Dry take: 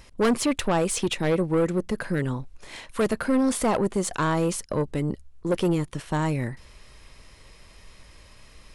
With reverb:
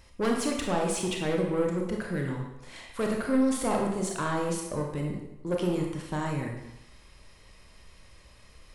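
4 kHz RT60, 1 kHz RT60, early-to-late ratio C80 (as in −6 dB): 0.75 s, 0.95 s, 6.0 dB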